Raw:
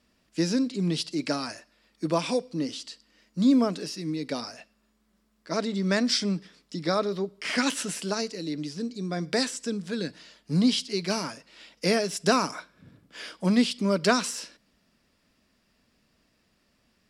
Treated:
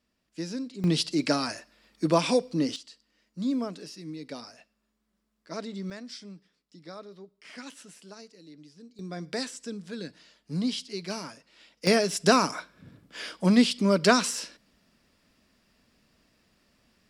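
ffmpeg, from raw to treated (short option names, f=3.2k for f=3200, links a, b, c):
-af "asetnsamples=n=441:p=0,asendcmd='0.84 volume volume 3dB;2.76 volume volume -8dB;5.9 volume volume -17.5dB;8.99 volume volume -6.5dB;11.87 volume volume 2dB',volume=-9dB"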